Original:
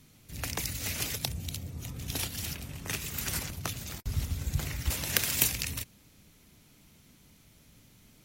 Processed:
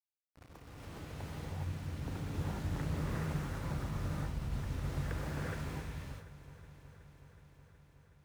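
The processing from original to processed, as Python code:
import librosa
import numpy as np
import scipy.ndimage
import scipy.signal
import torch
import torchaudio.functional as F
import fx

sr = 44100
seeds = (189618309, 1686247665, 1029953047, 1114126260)

p1 = fx.fade_in_head(x, sr, length_s=1.11)
p2 = fx.doppler_pass(p1, sr, speed_mps=12, closest_m=3.6, pass_at_s=3.3)
p3 = scipy.signal.sosfilt(scipy.signal.butter(4, 1500.0, 'lowpass', fs=sr, output='sos'), p2)
p4 = fx.low_shelf(p3, sr, hz=150.0, db=3.0)
p5 = fx.hum_notches(p4, sr, base_hz=60, count=3)
p6 = fx.over_compress(p5, sr, threshold_db=-46.0, ratio=-1.0)
p7 = 10.0 ** (-35.5 / 20.0) * np.tanh(p6 / 10.0 ** (-35.5 / 20.0))
p8 = fx.quant_dither(p7, sr, seeds[0], bits=10, dither='none')
p9 = p8 + fx.echo_heads(p8, sr, ms=370, heads='first and second', feedback_pct=67, wet_db=-20.5, dry=0)
p10 = fx.rev_gated(p9, sr, seeds[1], gate_ms=440, shape='rising', drr_db=-6.0)
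p11 = fx.doppler_dist(p10, sr, depth_ms=0.22)
y = p11 * 10.0 ** (3.5 / 20.0)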